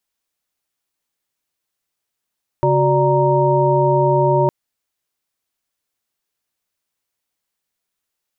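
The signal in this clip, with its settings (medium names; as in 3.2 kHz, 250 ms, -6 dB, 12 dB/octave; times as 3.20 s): chord C#3/F#4/D5/A#5 sine, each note -17.5 dBFS 1.86 s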